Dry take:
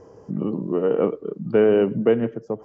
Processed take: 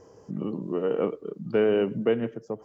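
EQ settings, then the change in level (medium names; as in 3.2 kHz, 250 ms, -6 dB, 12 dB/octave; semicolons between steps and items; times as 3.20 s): treble shelf 2.5 kHz +10 dB; -6.0 dB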